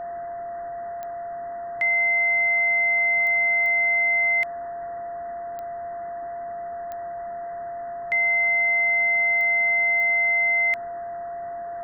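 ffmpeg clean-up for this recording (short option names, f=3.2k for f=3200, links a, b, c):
-af "adeclick=t=4,bandreject=f=690:w=30,afwtdn=0.013"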